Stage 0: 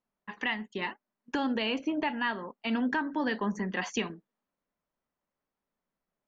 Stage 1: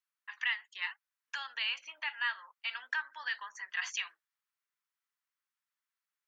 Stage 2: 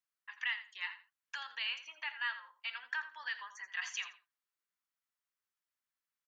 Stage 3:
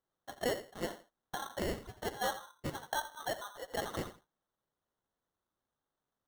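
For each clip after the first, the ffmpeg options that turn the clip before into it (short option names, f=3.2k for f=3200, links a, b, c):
-af "highpass=f=1.3k:w=0.5412,highpass=f=1.3k:w=1.3066"
-af "aecho=1:1:84|168:0.224|0.0403,volume=-3.5dB"
-af "acrusher=samples=18:mix=1:aa=0.000001,volume=2.5dB"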